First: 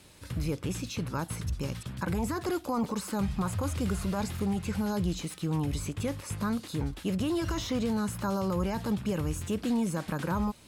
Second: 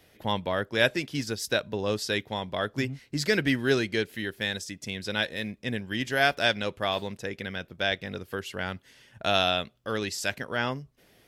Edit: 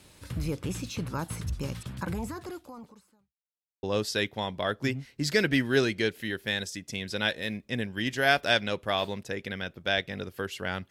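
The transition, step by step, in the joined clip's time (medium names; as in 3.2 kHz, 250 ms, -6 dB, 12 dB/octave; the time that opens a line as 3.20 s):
first
1.96–3.34 s: fade out quadratic
3.34–3.83 s: mute
3.83 s: go over to second from 1.77 s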